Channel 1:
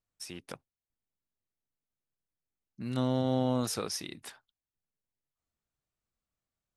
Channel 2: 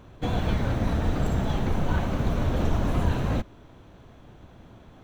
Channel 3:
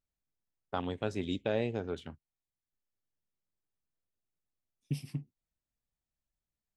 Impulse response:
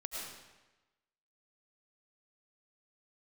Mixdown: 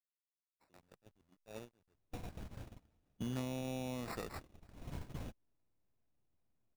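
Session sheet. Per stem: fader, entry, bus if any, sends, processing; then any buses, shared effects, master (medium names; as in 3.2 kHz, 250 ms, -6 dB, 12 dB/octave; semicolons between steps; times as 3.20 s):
+1.0 dB, 0.40 s, no send, auto duck -14 dB, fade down 1.70 s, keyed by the third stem
2.62 s -11 dB -> 3.21 s -19.5 dB -> 4.04 s -19.5 dB -> 4.82 s -11 dB, 1.90 s, no send, compression 6:1, threshold -29 dBFS, peak gain reduction 11.5 dB
-13.0 dB, 0.00 s, muted 2.61–4.76 s, no send, send-on-delta sampling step -30.5 dBFS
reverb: none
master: sample-and-hold 14×; gate -41 dBFS, range -28 dB; compression 6:1, threshold -36 dBFS, peak gain reduction 11 dB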